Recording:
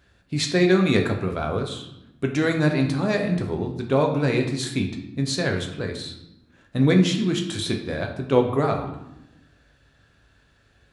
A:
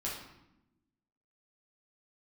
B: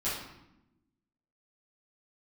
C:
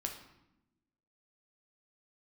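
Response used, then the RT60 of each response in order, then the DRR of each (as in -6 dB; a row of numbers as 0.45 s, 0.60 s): C; 0.90 s, 0.90 s, 0.90 s; -5.5 dB, -11.5 dB, 2.5 dB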